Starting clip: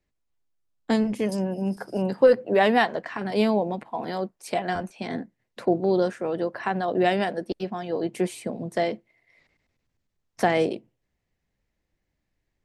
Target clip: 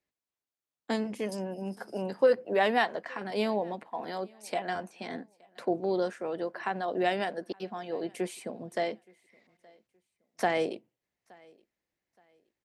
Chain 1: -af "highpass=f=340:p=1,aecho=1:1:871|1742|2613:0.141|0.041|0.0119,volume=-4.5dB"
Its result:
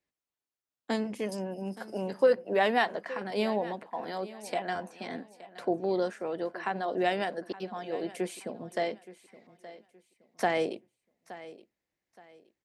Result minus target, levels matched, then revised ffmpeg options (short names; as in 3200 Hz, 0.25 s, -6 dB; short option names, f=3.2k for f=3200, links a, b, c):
echo-to-direct +10.5 dB
-af "highpass=f=340:p=1,aecho=1:1:871|1742:0.0422|0.0122,volume=-4.5dB"